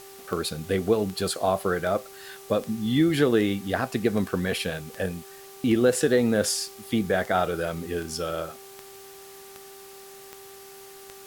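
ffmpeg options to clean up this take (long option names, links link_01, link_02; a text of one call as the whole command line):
ffmpeg -i in.wav -af "adeclick=threshold=4,bandreject=frequency=391.4:width_type=h:width=4,bandreject=frequency=782.8:width_type=h:width=4,bandreject=frequency=1174.2:width_type=h:width=4,afwtdn=0.004" out.wav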